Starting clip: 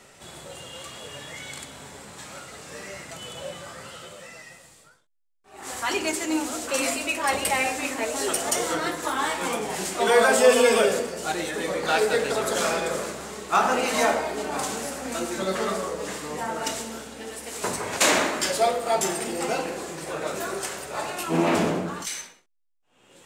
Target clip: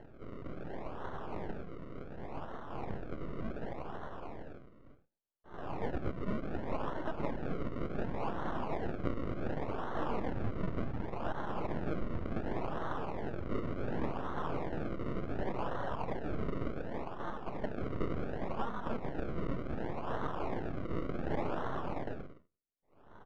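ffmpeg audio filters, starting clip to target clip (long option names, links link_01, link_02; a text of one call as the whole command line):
ffmpeg -i in.wav -filter_complex "[0:a]highpass=370,aresample=8000,aeval=exprs='abs(val(0))':channel_layout=same,aresample=44100,acompressor=threshold=-33dB:ratio=10,equalizer=frequency=580:width=0.51:gain=5.5,asplit=2[link_01][link_02];[link_02]adelay=151.6,volume=-28dB,highshelf=frequency=4000:gain=-3.41[link_03];[link_01][link_03]amix=inputs=2:normalize=0,acrusher=samples=36:mix=1:aa=0.000001:lfo=1:lforange=36:lforate=0.68,lowpass=1700,volume=1.5dB" out.wav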